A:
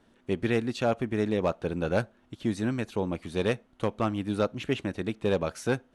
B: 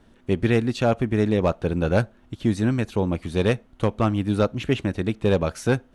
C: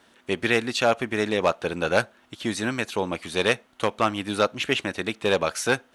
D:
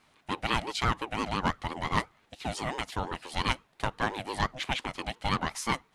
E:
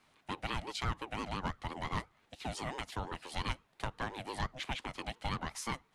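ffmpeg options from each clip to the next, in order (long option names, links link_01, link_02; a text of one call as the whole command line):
ffmpeg -i in.wav -af "lowshelf=frequency=110:gain=11.5,volume=4.5dB" out.wav
ffmpeg -i in.wav -af "highpass=frequency=1300:poles=1,volume=8dB" out.wav
ffmpeg -i in.wav -af "aeval=exprs='val(0)*sin(2*PI*540*n/s+540*0.3/5.8*sin(2*PI*5.8*n/s))':channel_layout=same,volume=-4dB" out.wav
ffmpeg -i in.wav -filter_complex "[0:a]acrossover=split=130[link_01][link_02];[link_02]acompressor=threshold=-33dB:ratio=2.5[link_03];[link_01][link_03]amix=inputs=2:normalize=0,volume=-4dB" out.wav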